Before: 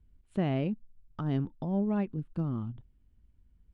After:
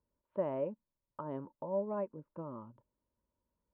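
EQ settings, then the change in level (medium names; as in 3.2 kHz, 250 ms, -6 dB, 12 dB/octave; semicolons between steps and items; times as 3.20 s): two resonant band-passes 740 Hz, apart 0.7 oct; distance through air 330 m; +8.0 dB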